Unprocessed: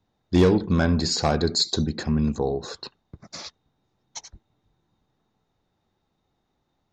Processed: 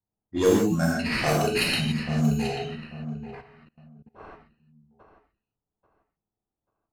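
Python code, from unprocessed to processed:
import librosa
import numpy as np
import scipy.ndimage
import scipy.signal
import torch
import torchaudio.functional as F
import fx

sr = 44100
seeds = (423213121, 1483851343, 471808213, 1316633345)

y = fx.noise_reduce_blind(x, sr, reduce_db=16)
y = fx.sample_hold(y, sr, seeds[0], rate_hz=6900.0, jitter_pct=0)
y = fx.echo_feedback(y, sr, ms=838, feedback_pct=24, wet_db=-11.5)
y = fx.rev_gated(y, sr, seeds[1], gate_ms=190, shape='flat', drr_db=-4.0)
y = fx.level_steps(y, sr, step_db=22, at=(3.4, 4.18), fade=0.02)
y = fx.env_lowpass(y, sr, base_hz=1100.0, full_db=-13.5)
y = y * librosa.db_to_amplitude(-5.0)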